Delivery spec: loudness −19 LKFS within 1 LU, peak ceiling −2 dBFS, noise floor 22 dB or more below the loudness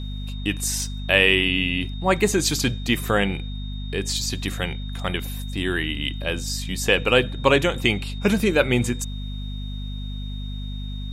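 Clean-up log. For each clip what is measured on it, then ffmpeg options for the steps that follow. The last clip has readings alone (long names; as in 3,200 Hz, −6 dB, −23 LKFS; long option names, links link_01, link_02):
mains hum 50 Hz; hum harmonics up to 250 Hz; level of the hum −28 dBFS; interfering tone 3,700 Hz; level of the tone −41 dBFS; integrated loudness −23.0 LKFS; sample peak −1.5 dBFS; target loudness −19.0 LKFS
→ -af "bandreject=frequency=50:width_type=h:width=6,bandreject=frequency=100:width_type=h:width=6,bandreject=frequency=150:width_type=h:width=6,bandreject=frequency=200:width_type=h:width=6,bandreject=frequency=250:width_type=h:width=6"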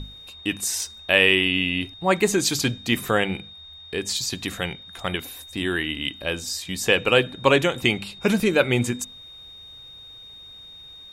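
mains hum none found; interfering tone 3,700 Hz; level of the tone −41 dBFS
→ -af "bandreject=frequency=3700:width=30"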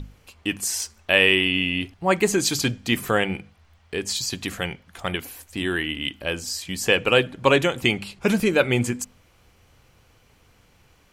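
interfering tone none found; integrated loudness −22.5 LKFS; sample peak −2.0 dBFS; target loudness −19.0 LKFS
→ -af "volume=3.5dB,alimiter=limit=-2dB:level=0:latency=1"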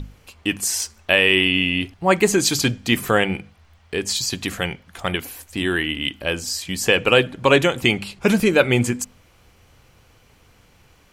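integrated loudness −19.5 LKFS; sample peak −2.0 dBFS; background noise floor −55 dBFS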